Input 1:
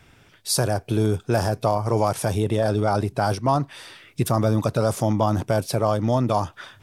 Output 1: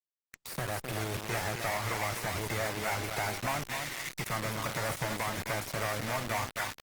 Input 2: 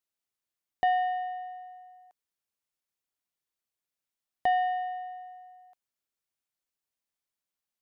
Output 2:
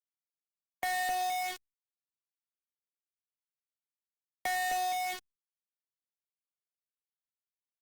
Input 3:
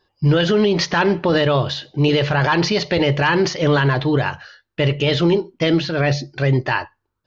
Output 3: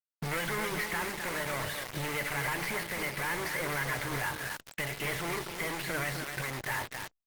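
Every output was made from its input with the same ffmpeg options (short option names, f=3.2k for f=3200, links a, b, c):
-filter_complex "[0:a]asoftclip=type=tanh:threshold=-15dB,acompressor=threshold=-23dB:ratio=2,asoftclip=type=hard:threshold=-22.5dB,acrossover=split=85|800|1800[a][b][c][d];[a]acompressor=threshold=-52dB:ratio=4[e];[b]acompressor=threshold=-40dB:ratio=4[f];[c]acompressor=threshold=-32dB:ratio=4[g];[d]acompressor=threshold=-46dB:ratio=4[h];[e][f][g][h]amix=inputs=4:normalize=0,equalizer=f=2.1k:t=o:w=0.44:g=13.5,alimiter=limit=-22.5dB:level=0:latency=1:release=383,lowshelf=f=70:g=6,bandreject=f=200.8:t=h:w=4,bandreject=f=401.6:t=h:w=4,bandreject=f=602.4:t=h:w=4,bandreject=f=803.2:t=h:w=4,bandreject=f=1.004k:t=h:w=4,bandreject=f=1.2048k:t=h:w=4,bandreject=f=1.4056k:t=h:w=4,bandreject=f=1.6064k:t=h:w=4,bandreject=f=1.8072k:t=h:w=4,bandreject=f=2.008k:t=h:w=4,bandreject=f=2.2088k:t=h:w=4,bandreject=f=2.4096k:t=h:w=4,bandreject=f=2.6104k:t=h:w=4,bandreject=f=2.8112k:t=h:w=4,bandreject=f=3.012k:t=h:w=4,bandreject=f=3.2128k:t=h:w=4,bandreject=f=3.4136k:t=h:w=4,asplit=2[i][j];[j]aecho=0:1:259|470:0.473|0.188[k];[i][k]amix=inputs=2:normalize=0,acrusher=bits=5:mix=0:aa=0.000001" -ar 48000 -c:a libopus -b:a 24k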